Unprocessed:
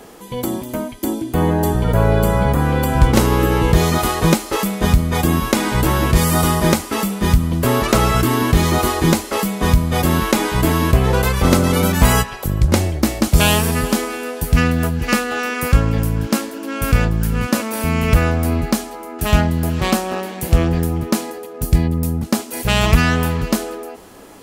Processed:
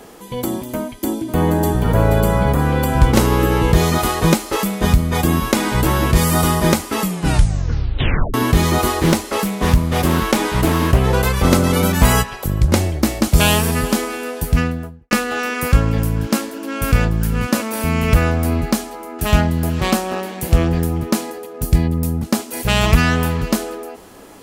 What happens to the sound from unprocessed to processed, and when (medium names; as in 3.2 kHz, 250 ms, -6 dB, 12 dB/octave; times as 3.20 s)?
0.80–1.72 s: echo throw 480 ms, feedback 35%, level -7.5 dB
7.01 s: tape stop 1.33 s
9.02–11.00 s: loudspeaker Doppler distortion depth 0.48 ms
14.38–15.11 s: studio fade out